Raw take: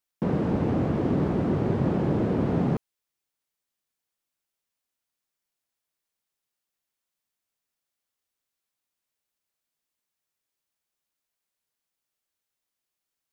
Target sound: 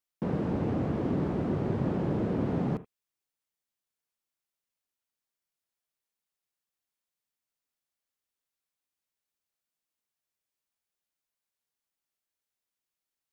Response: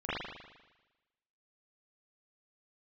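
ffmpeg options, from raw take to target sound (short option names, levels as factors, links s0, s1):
-filter_complex "[0:a]asplit=2[s0][s1];[1:a]atrim=start_sample=2205,atrim=end_sample=3969[s2];[s1][s2]afir=irnorm=-1:irlink=0,volume=0.112[s3];[s0][s3]amix=inputs=2:normalize=0,volume=0.531"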